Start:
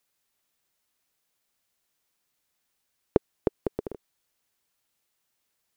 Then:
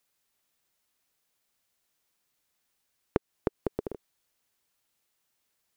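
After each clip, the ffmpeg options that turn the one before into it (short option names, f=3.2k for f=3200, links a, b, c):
-af "acompressor=threshold=-24dB:ratio=3"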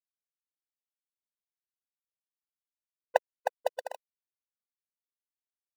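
-af "aphaser=in_gain=1:out_gain=1:delay=1.5:decay=0.48:speed=1.9:type=triangular,aeval=exprs='val(0)*gte(abs(val(0)),0.0282)':c=same,afftfilt=real='re*eq(mod(floor(b*sr/1024/500),2),1)':imag='im*eq(mod(floor(b*sr/1024/500),2),1)':win_size=1024:overlap=0.75,volume=7.5dB"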